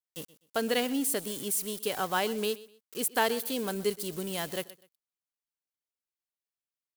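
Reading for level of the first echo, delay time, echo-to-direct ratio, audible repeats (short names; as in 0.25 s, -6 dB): -19.0 dB, 0.125 s, -18.5 dB, 2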